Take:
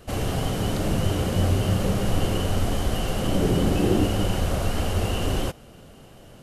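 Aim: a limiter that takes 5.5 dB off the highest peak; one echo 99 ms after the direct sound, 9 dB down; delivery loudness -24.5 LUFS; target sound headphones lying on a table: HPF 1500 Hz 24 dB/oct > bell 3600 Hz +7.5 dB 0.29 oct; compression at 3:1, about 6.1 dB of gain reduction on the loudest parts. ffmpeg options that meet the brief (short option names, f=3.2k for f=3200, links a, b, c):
-af "acompressor=threshold=-25dB:ratio=3,alimiter=limit=-21dB:level=0:latency=1,highpass=f=1.5k:w=0.5412,highpass=f=1.5k:w=1.3066,equalizer=f=3.6k:t=o:w=0.29:g=7.5,aecho=1:1:99:0.355,volume=14.5dB"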